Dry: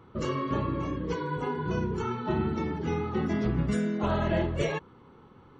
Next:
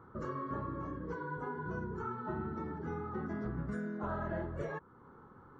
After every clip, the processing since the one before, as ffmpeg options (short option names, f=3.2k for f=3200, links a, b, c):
-af "highshelf=f=2k:t=q:w=3:g=-9.5,acompressor=threshold=-44dB:ratio=1.5,volume=-4dB"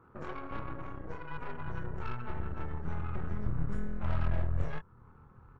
-filter_complex "[0:a]asplit=2[a][b];[b]adelay=25,volume=-4.5dB[c];[a][c]amix=inputs=2:normalize=0,aeval=exprs='0.0631*(cos(1*acos(clip(val(0)/0.0631,-1,1)))-cos(1*PI/2))+0.0158*(cos(4*acos(clip(val(0)/0.0631,-1,1)))-cos(4*PI/2))+0.00316*(cos(8*acos(clip(val(0)/0.0631,-1,1)))-cos(8*PI/2))':c=same,asubboost=boost=7.5:cutoff=110,volume=-5dB"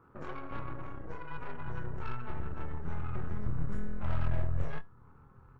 -af "flanger=delay=6.9:depth=2.2:regen=82:speed=0.4:shape=triangular,volume=3.5dB"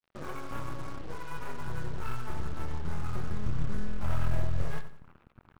-af "acrusher=bits=7:mix=0:aa=0.5,aecho=1:1:90|180|270|360:0.224|0.0828|0.0306|0.0113,volume=2dB"